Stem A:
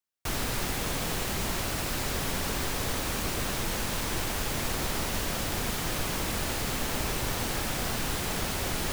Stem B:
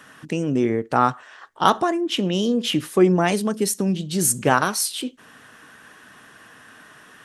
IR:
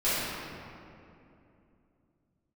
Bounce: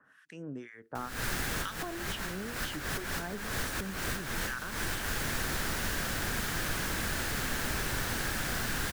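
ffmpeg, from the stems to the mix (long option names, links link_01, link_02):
-filter_complex "[0:a]adelay=700,volume=-3dB[link_01];[1:a]acrossover=split=1300[link_02][link_03];[link_02]aeval=exprs='val(0)*(1-1/2+1/2*cos(2*PI*2.1*n/s))':channel_layout=same[link_04];[link_03]aeval=exprs='val(0)*(1-1/2-1/2*cos(2*PI*2.1*n/s))':channel_layout=same[link_05];[link_04][link_05]amix=inputs=2:normalize=0,volume=-17dB,asplit=2[link_06][link_07];[link_07]apad=whole_len=424298[link_08];[link_01][link_08]sidechaincompress=threshold=-48dB:ratio=10:attack=25:release=166[link_09];[link_09][link_06]amix=inputs=2:normalize=0,equalizer=frequency=1600:width=2.2:gain=11.5,acrossover=split=390|3000[link_10][link_11][link_12];[link_11]acompressor=threshold=-37dB:ratio=2.5[link_13];[link_10][link_13][link_12]amix=inputs=3:normalize=0"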